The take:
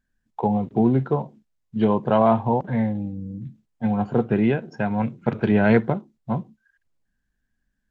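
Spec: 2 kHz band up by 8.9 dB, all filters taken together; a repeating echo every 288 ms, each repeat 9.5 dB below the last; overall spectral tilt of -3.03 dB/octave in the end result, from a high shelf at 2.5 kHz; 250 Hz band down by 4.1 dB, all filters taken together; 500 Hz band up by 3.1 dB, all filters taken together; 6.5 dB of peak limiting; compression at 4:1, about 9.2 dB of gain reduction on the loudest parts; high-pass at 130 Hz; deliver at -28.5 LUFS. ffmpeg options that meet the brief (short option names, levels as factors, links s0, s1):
-af "highpass=130,equalizer=f=250:t=o:g=-5.5,equalizer=f=500:t=o:g=4.5,equalizer=f=2000:t=o:g=9,highshelf=f=2500:g=6,acompressor=threshold=0.0891:ratio=4,alimiter=limit=0.158:level=0:latency=1,aecho=1:1:288|576|864|1152:0.335|0.111|0.0365|0.012"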